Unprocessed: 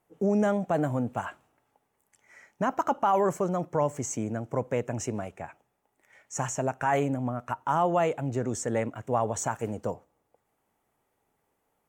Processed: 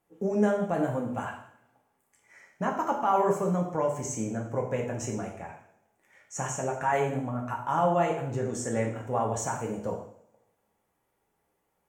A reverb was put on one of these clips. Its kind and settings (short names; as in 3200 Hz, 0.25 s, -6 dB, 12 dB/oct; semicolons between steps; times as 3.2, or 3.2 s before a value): two-slope reverb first 0.62 s, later 1.7 s, from -25 dB, DRR -1 dB; gain -4 dB